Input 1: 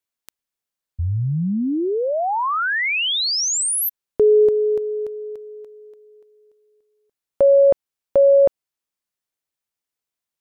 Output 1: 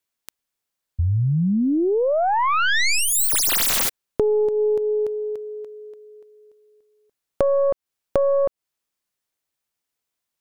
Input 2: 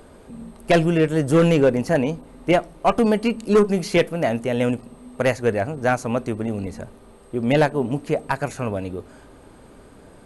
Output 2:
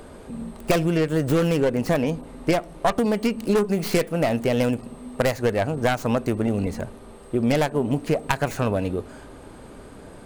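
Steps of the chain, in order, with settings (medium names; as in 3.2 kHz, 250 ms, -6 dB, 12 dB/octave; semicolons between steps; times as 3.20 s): tracing distortion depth 0.38 ms; compression 12:1, threshold -21 dBFS; trim +4 dB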